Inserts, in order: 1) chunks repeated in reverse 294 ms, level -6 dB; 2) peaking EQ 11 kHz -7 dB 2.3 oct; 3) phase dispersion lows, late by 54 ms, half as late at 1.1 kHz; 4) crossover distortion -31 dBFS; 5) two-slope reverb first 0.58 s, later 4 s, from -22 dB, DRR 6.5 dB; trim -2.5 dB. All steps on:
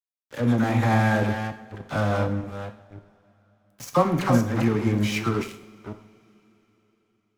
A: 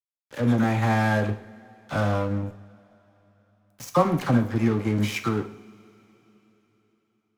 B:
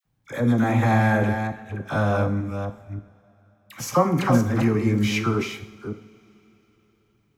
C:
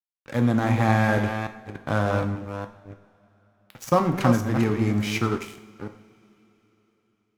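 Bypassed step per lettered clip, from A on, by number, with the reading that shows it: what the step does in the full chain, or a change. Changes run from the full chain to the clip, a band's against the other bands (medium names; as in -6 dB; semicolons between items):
1, momentary loudness spread change -7 LU; 4, distortion -15 dB; 3, crest factor change +2.5 dB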